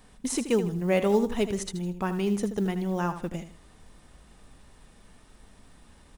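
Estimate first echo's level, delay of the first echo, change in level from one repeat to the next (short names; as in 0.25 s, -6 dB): -11.0 dB, 79 ms, -10.5 dB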